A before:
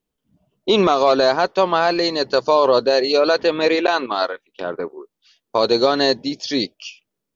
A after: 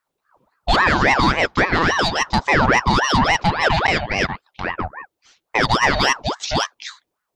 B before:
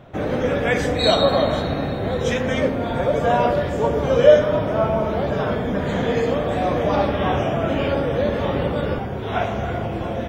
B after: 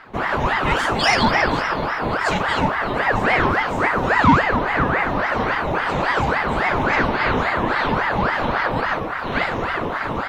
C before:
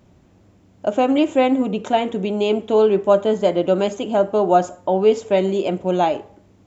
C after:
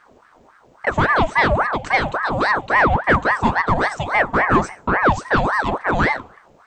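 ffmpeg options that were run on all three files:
-af "acontrast=88,aeval=exprs='val(0)*sin(2*PI*900*n/s+900*0.65/3.6*sin(2*PI*3.6*n/s))':c=same,volume=-3dB"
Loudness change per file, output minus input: 0.0, +1.0, +0.5 LU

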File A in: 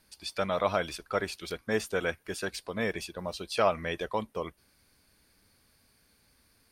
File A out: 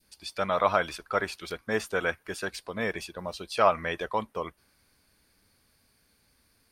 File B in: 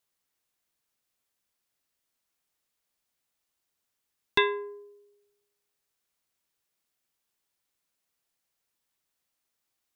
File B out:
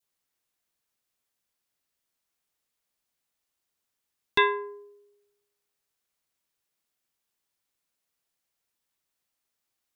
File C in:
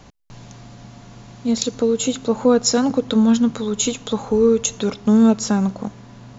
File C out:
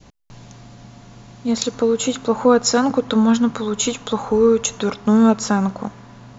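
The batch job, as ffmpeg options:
-af "adynamicequalizer=threshold=0.0141:dfrequency=1200:dqfactor=0.77:tfrequency=1200:tqfactor=0.77:attack=5:release=100:ratio=0.375:range=4:mode=boostabove:tftype=bell,volume=-1dB"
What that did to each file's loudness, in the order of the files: +2.5, +2.0, +0.5 LU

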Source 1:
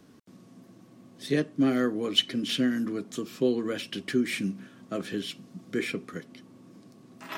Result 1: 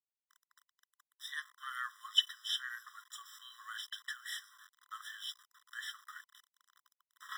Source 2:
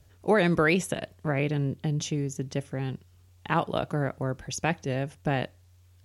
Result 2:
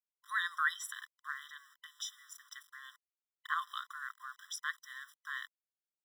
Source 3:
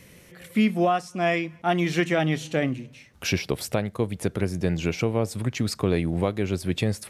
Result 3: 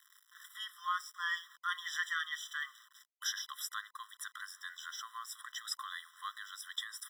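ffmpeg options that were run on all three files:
-af "aeval=exprs='val(0)*gte(abs(val(0)),0.00631)':c=same,bandreject=f=50:t=h:w=6,bandreject=f=100:t=h:w=6,afftfilt=real='re*eq(mod(floor(b*sr/1024/1000),2),1)':imag='im*eq(mod(floor(b*sr/1024/1000),2),1)':win_size=1024:overlap=0.75,volume=-3.5dB"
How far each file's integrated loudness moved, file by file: -10.5, -11.0, -14.5 LU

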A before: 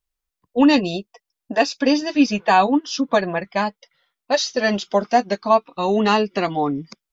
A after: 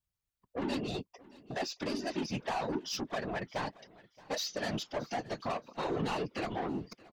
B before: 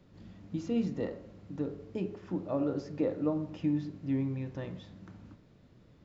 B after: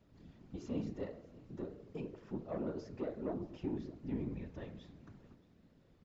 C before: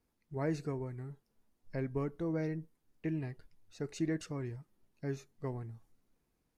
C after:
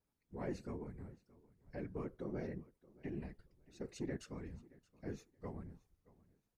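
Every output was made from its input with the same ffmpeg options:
-filter_complex "[0:a]acompressor=threshold=-18dB:ratio=6,asoftclip=type=tanh:threshold=-24dB,afftfilt=real='hypot(re,im)*cos(2*PI*random(0))':imag='hypot(re,im)*sin(2*PI*random(1))':win_size=512:overlap=0.75,asplit=2[a][b];[b]aecho=0:1:624|1248:0.0794|0.0199[c];[a][c]amix=inputs=2:normalize=0,volume=-1dB"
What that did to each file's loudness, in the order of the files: -17.0, -8.5, -8.0 LU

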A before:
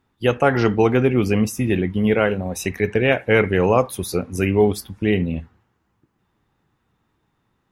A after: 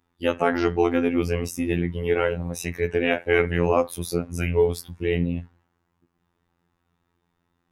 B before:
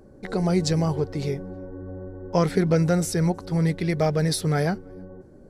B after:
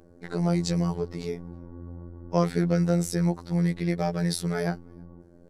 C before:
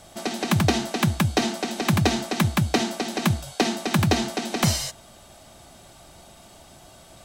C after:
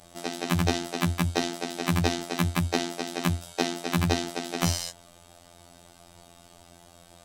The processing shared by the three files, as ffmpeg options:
-af "afftfilt=real='hypot(re,im)*cos(PI*b)':imag='0':win_size=2048:overlap=0.75,volume=-1dB"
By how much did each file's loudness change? -4.5, -3.0, -4.5 LU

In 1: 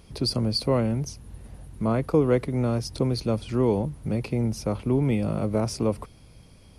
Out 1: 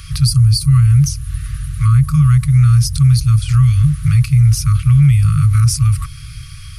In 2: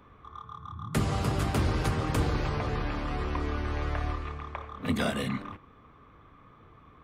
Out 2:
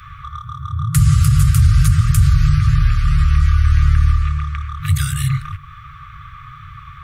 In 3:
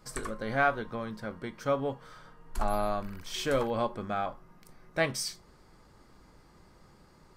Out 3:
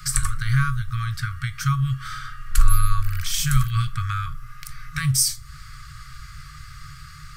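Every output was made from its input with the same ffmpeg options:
-filter_complex "[0:a]afftfilt=real='re*(1-between(b*sr/4096,160,1100))':imag='im*(1-between(b*sr/4096,160,1100))':win_size=4096:overlap=0.75,acrossover=split=110|630|6700[a][b][c][d];[c]acompressor=threshold=-51dB:ratio=10[e];[a][b][e][d]amix=inputs=4:normalize=0,alimiter=level_in=23.5dB:limit=-1dB:release=50:level=0:latency=1,volume=-3dB"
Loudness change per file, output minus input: +13.5, +15.5, +8.0 LU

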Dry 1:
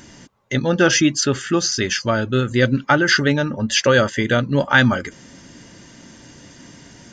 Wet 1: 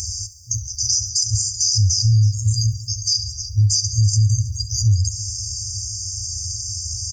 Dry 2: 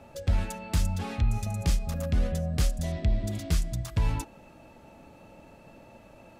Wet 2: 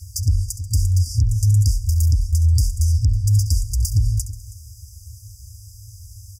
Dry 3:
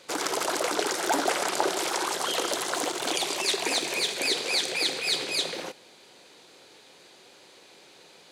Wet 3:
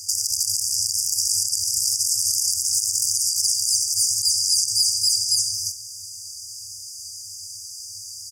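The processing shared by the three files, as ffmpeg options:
-filter_complex "[0:a]afftfilt=real='re*(1-between(b*sr/4096,110,4700))':imag='im*(1-between(b*sr/4096,110,4700))':win_size=4096:overlap=0.75,acrossover=split=210[a][b];[b]acompressor=threshold=-54dB:ratio=1.5[c];[a][c]amix=inputs=2:normalize=0,asplit=2[d][e];[e]aecho=0:1:68|136|204|272:0.158|0.0729|0.0335|0.0154[f];[d][f]amix=inputs=2:normalize=0,acompressor=threshold=-36dB:ratio=3,highpass=72,asplit=2[g][h];[h]aecho=0:1:323:0.106[i];[g][i]amix=inputs=2:normalize=0,alimiter=level_in=33dB:limit=-1dB:release=50:level=0:latency=1,volume=-8dB"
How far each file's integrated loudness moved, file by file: -2.0, +10.5, +7.5 LU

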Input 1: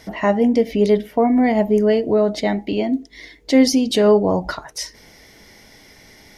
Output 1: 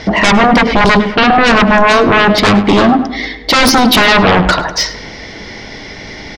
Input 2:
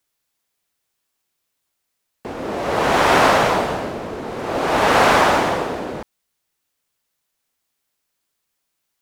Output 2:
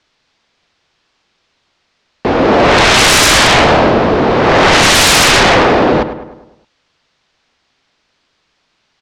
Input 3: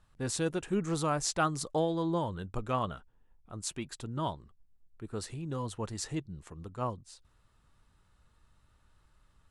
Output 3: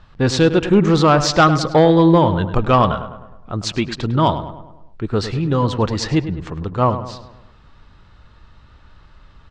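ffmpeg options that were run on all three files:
-filter_complex "[0:a]lowpass=f=5k:w=0.5412,lowpass=f=5k:w=1.3066,aeval=exprs='0.794*sin(PI/2*7.94*val(0)/0.794)':c=same,asplit=2[a][b];[b]adelay=103,lowpass=f=2.7k:p=1,volume=-11dB,asplit=2[c][d];[d]adelay=103,lowpass=f=2.7k:p=1,volume=0.52,asplit=2[e][f];[f]adelay=103,lowpass=f=2.7k:p=1,volume=0.52,asplit=2[g][h];[h]adelay=103,lowpass=f=2.7k:p=1,volume=0.52,asplit=2[i][j];[j]adelay=103,lowpass=f=2.7k:p=1,volume=0.52,asplit=2[k][l];[l]adelay=103,lowpass=f=2.7k:p=1,volume=0.52[m];[c][e][g][i][k][m]amix=inputs=6:normalize=0[n];[a][n]amix=inputs=2:normalize=0,volume=-3dB"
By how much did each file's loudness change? +8.5, +9.5, +17.5 LU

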